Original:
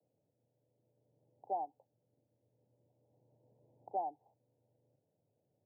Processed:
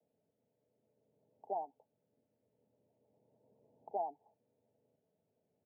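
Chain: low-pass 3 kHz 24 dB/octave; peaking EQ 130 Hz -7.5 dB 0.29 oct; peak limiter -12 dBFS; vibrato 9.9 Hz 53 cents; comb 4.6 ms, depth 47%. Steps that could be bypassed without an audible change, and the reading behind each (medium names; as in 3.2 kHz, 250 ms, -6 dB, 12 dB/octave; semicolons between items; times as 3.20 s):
low-pass 3 kHz: input has nothing above 1 kHz; peak limiter -12 dBFS: peak at its input -26.5 dBFS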